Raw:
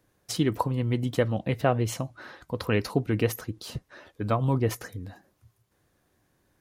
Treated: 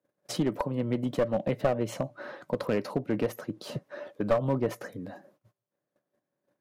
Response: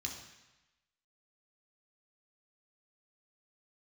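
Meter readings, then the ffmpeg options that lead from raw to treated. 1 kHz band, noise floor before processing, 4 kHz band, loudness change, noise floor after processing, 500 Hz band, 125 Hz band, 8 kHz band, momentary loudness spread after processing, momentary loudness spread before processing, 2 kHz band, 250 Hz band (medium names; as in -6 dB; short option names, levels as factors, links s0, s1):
-4.0 dB, -71 dBFS, -5.5 dB, -2.5 dB, under -85 dBFS, +0.5 dB, -7.5 dB, -7.0 dB, 13 LU, 14 LU, -5.0 dB, -1.5 dB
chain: -af "acontrast=89,highshelf=f=2600:g=-11,alimiter=limit=0.2:level=0:latency=1:release=436,highpass=f=150:w=0.5412,highpass=f=150:w=1.3066,equalizer=f=580:w=8:g=13.5,aeval=exprs='clip(val(0),-1,0.0891)':c=same,agate=range=0.1:threshold=0.00112:ratio=16:detection=peak,volume=0.75"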